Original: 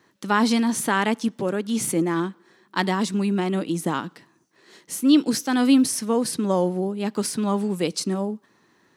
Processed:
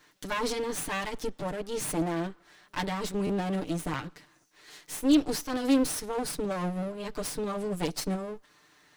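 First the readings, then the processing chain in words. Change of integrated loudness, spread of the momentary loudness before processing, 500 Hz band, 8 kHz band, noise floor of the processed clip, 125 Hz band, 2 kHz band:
-8.0 dB, 9 LU, -6.5 dB, -7.5 dB, -63 dBFS, -6.5 dB, -8.5 dB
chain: comb filter that takes the minimum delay 6.7 ms; buffer glitch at 3.26 s, samples 512, times 2; tape noise reduction on one side only encoder only; trim -5 dB

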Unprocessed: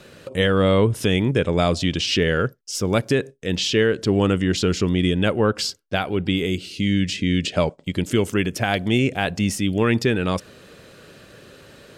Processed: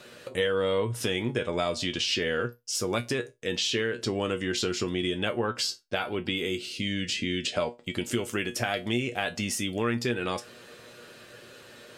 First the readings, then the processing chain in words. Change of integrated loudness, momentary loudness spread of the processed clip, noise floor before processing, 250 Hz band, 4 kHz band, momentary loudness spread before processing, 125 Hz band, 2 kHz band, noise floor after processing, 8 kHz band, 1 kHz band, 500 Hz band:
-8.0 dB, 15 LU, -48 dBFS, -11.0 dB, -4.5 dB, 5 LU, -13.0 dB, -5.5 dB, -51 dBFS, -3.0 dB, -7.0 dB, -8.0 dB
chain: bass shelf 230 Hz -11 dB; feedback comb 120 Hz, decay 0.17 s, harmonics all, mix 80%; compression 2.5:1, threshold -32 dBFS, peak gain reduction 8 dB; trim +5.5 dB

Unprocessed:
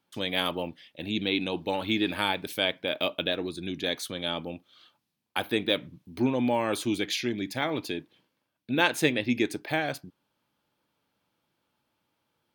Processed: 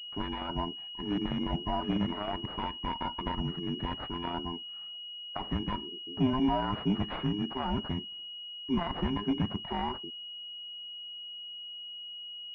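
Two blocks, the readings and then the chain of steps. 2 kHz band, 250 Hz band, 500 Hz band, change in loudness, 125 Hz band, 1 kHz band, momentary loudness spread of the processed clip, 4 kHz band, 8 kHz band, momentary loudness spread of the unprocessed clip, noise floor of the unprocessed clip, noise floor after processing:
-14.5 dB, -1.5 dB, -8.5 dB, -5.5 dB, +3.0 dB, -0.5 dB, 9 LU, -2.5 dB, under -30 dB, 10 LU, -79 dBFS, -43 dBFS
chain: every band turned upside down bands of 500 Hz; peak limiter -18.5 dBFS, peak gain reduction 11 dB; class-D stage that switches slowly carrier 2.9 kHz

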